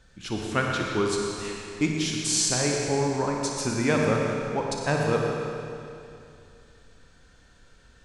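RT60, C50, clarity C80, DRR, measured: 2.6 s, -0.5 dB, 1.0 dB, -1.0 dB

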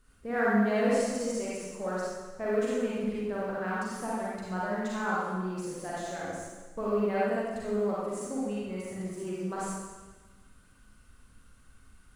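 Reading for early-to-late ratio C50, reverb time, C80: -4.5 dB, 1.3 s, -1.0 dB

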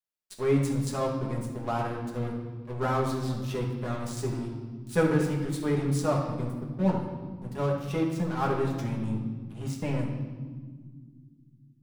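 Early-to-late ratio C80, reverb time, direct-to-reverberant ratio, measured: 6.0 dB, no single decay rate, -2.5 dB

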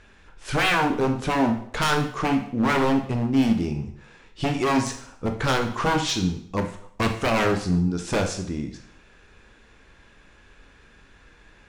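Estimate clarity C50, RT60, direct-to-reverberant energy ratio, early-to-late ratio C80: 9.0 dB, 0.60 s, 4.5 dB, 12.0 dB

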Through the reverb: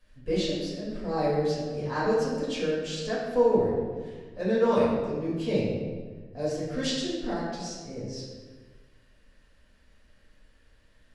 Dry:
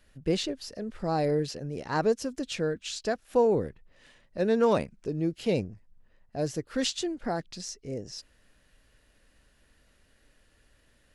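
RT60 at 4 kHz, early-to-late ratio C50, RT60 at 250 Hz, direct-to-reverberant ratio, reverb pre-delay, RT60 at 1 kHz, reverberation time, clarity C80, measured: 1.0 s, -0.5 dB, 1.6 s, -9.5 dB, 4 ms, 1.4 s, 1.5 s, 2.5 dB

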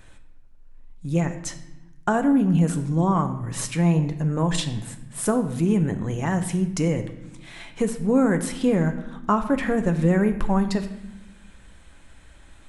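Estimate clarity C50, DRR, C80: 11.0 dB, 7.0 dB, 13.0 dB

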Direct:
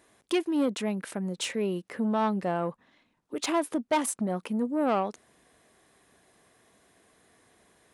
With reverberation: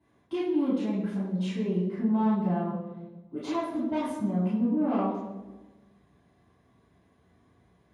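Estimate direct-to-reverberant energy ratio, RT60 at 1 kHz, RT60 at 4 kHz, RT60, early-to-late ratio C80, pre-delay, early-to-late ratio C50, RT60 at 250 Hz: -11.5 dB, 1.1 s, 0.85 s, 1.2 s, 4.0 dB, 3 ms, 1.0 dB, 1.5 s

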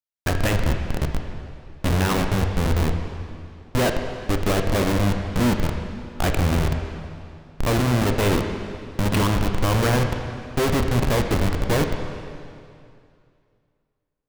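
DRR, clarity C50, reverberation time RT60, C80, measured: 4.0 dB, 5.0 dB, 2.4 s, 6.5 dB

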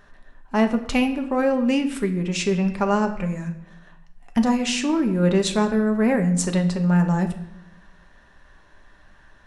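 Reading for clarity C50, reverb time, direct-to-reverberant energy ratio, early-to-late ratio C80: 11.5 dB, 0.80 s, 5.0 dB, 14.0 dB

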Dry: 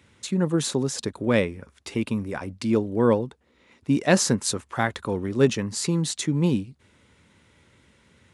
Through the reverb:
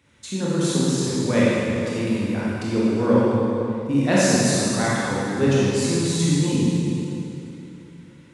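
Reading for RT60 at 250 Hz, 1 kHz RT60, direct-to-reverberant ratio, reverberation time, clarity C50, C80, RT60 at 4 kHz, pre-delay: 3.2 s, 2.8 s, -8.0 dB, 3.0 s, -5.0 dB, -2.5 dB, 2.5 s, 20 ms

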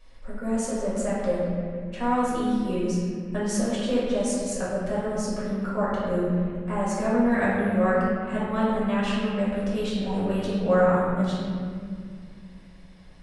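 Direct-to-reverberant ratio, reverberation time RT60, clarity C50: -9.0 dB, 2.1 s, -2.0 dB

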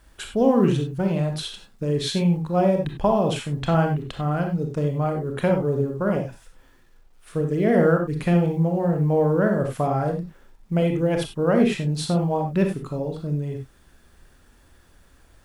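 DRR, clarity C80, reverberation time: 3.0 dB, 11.5 dB, no single decay rate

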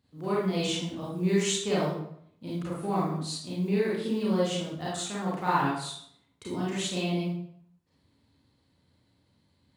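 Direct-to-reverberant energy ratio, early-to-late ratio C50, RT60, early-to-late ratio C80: -8.0 dB, -0.5 dB, 0.70 s, 4.0 dB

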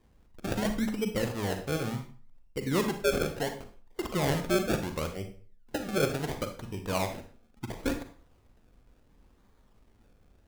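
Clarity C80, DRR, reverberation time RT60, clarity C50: 13.0 dB, 6.5 dB, 0.45 s, 9.0 dB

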